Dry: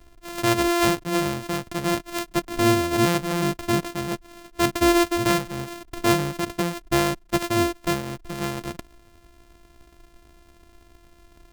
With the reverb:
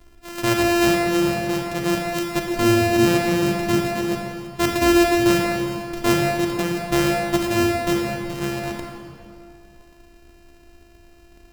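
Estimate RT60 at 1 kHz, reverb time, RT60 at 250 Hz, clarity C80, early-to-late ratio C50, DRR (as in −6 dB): 2.5 s, 2.4 s, 2.3 s, 3.0 dB, 2.0 dB, 1.0 dB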